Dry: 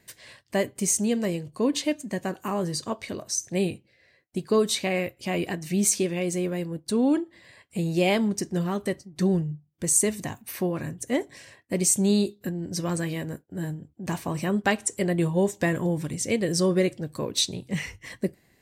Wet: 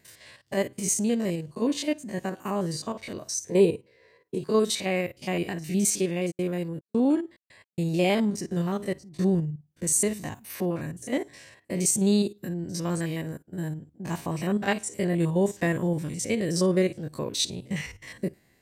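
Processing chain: stepped spectrum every 50 ms; 3.47–4.41 small resonant body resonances 450/980 Hz, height 18 dB, ringing for 45 ms; 6.3–7.85 step gate "x.xxx.x.x.xx" 108 bpm -60 dB

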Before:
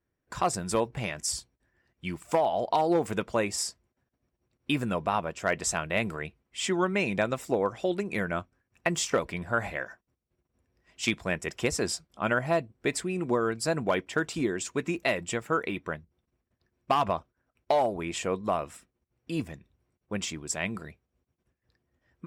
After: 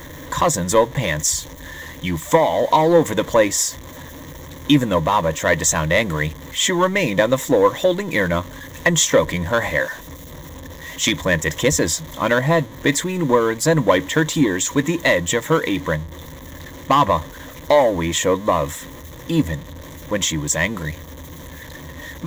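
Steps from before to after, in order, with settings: zero-crossing step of -39.5 dBFS; sample leveller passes 1; ripple EQ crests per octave 1.1, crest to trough 12 dB; gain +6 dB

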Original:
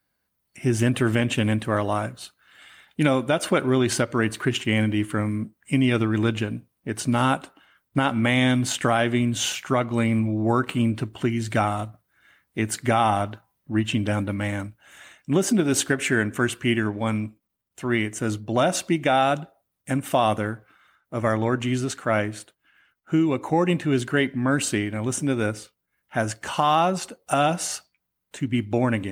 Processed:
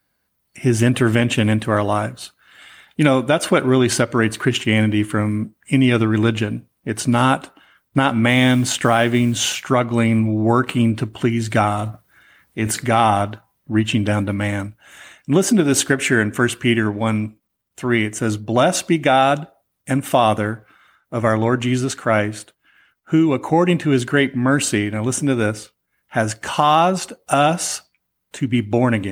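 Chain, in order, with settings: 8.28–9.62 modulation noise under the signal 32 dB; 11.78–13.06 transient shaper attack -4 dB, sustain +7 dB; gain +5.5 dB

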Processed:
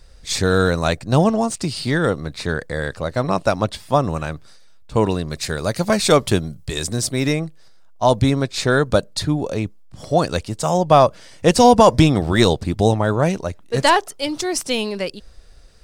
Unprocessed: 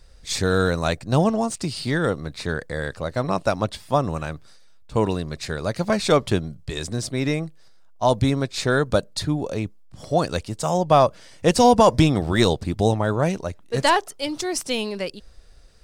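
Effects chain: 5.3–7.33 high shelf 7500 Hz +11.5 dB; gain +3.5 dB

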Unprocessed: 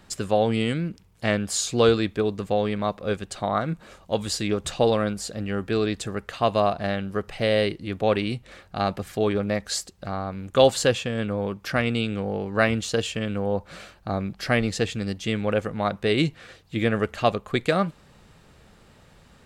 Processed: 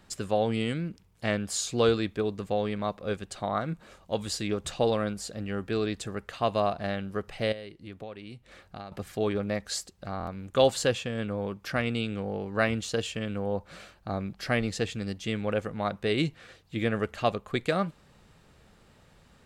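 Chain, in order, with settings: 7.52–8.92 compressor 5:1, threshold -35 dBFS, peak gain reduction 17 dB; stuck buffer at 10.18, samples 1024, times 3; gain -5 dB

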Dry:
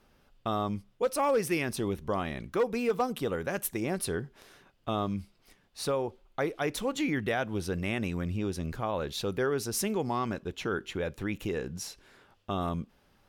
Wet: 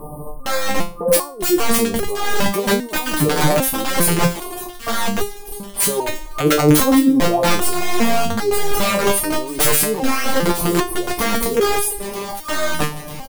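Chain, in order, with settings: FFT band-reject 1200–8500 Hz; negative-ratio compressor -39 dBFS, ratio -1; speakerphone echo 0.3 s, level -28 dB; wrapped overs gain 32 dB; on a send: thin delay 0.946 s, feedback 54%, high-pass 2200 Hz, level -15 dB; on the sum: maximiser +35.5 dB; stepped resonator 2.5 Hz 150–410 Hz; gain +4 dB

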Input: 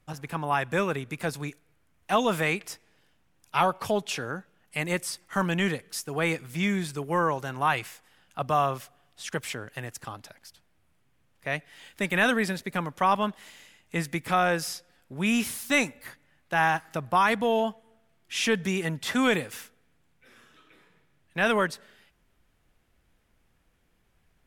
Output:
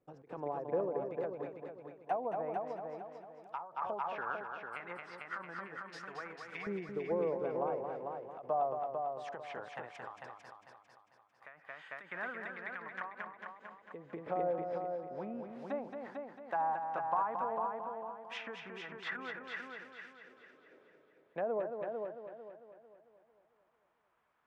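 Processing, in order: treble ducked by the level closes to 750 Hz, closed at -23 dBFS; compressor 4:1, threshold -29 dBFS, peak gain reduction 7.5 dB; LFO band-pass saw up 0.15 Hz 430–1900 Hz; multi-head echo 0.224 s, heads first and second, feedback 42%, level -6.5 dB; ending taper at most 110 dB/s; gain +2.5 dB

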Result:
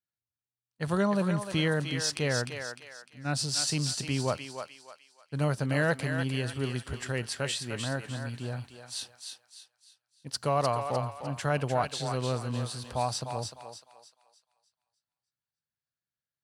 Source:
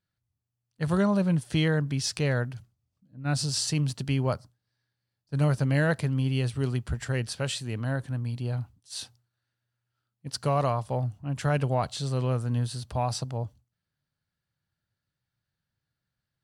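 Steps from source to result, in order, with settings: gate -56 dBFS, range -12 dB; low shelf 160 Hz -10 dB; on a send: thinning echo 0.302 s, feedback 39%, high-pass 690 Hz, level -5 dB

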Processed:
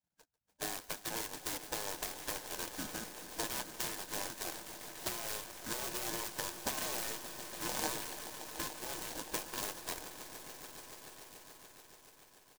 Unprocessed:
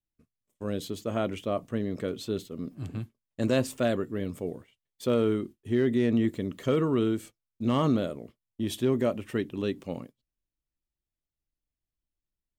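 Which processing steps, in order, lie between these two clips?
FFT order left unsorted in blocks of 32 samples; LPF 3300 Hz 12 dB/oct; bell 260 Hz -6 dB 0.38 oct; comb 1.3 ms, depth 99%; 8.68–9.33 level quantiser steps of 19 dB; transient shaper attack +4 dB, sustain -7 dB; compressor, threshold -30 dBFS, peak gain reduction 11 dB; spectral gate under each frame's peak -15 dB weak; swelling echo 0.144 s, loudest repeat 5, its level -15.5 dB; noise-modulated delay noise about 5800 Hz, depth 0.12 ms; gain +5.5 dB

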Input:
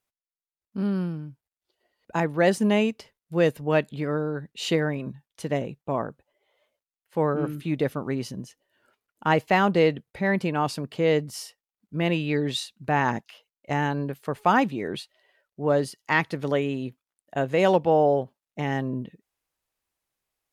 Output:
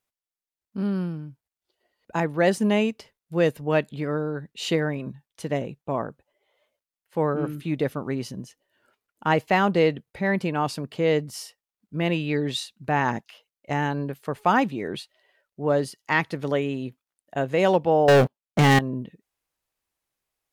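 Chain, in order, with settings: 18.08–18.79 sample leveller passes 5

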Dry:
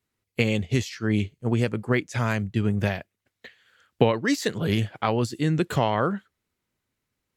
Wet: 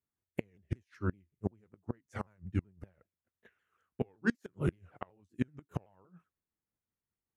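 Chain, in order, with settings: repeated pitch sweeps -4 st, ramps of 0.189 s; bell 4100 Hz -14.5 dB 1.5 oct; flipped gate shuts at -17 dBFS, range -27 dB; upward expander 1.5:1, over -48 dBFS

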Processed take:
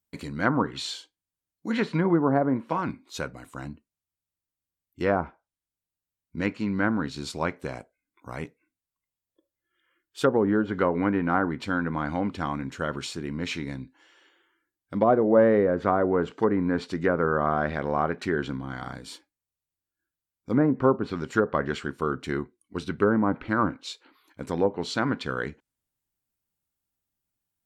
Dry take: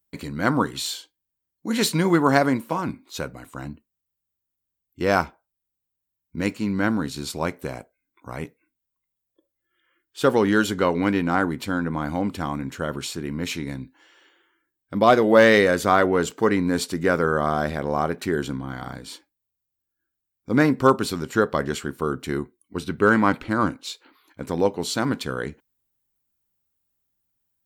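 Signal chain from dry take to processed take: treble ducked by the level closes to 710 Hz, closed at -14.5 dBFS; dynamic EQ 1600 Hz, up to +4 dB, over -37 dBFS, Q 1; gain -3 dB

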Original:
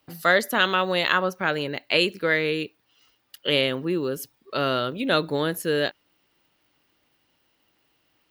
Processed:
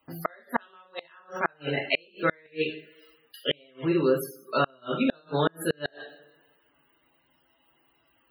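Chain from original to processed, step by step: bell 1100 Hz +5 dB 1.8 oct; two-slope reverb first 0.49 s, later 1.6 s, from -26 dB, DRR -2.5 dB; loudest bins only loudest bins 64; flipped gate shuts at -8 dBFS, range -36 dB; gain -3.5 dB

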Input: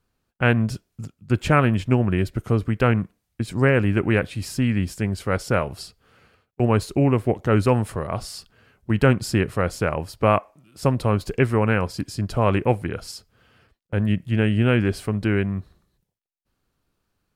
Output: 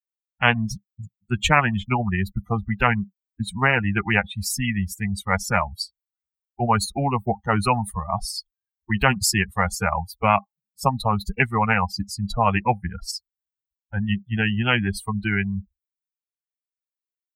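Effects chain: per-bin expansion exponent 3; EQ curve 120 Hz 0 dB, 200 Hz +6 dB, 330 Hz -27 dB, 520 Hz -17 dB, 800 Hz +12 dB, 3500 Hz -17 dB, 5600 Hz -15 dB; spectral compressor 4:1; gain +4.5 dB

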